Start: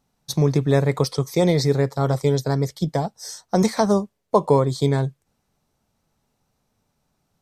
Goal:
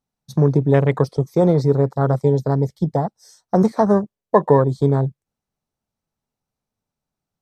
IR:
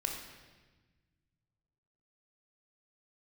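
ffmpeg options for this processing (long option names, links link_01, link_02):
-af "afwtdn=0.0355,volume=3dB"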